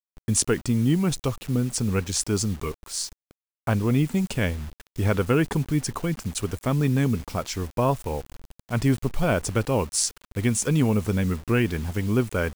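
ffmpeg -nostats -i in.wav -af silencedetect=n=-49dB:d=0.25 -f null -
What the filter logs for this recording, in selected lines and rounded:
silence_start: 3.31
silence_end: 3.67 | silence_duration: 0.36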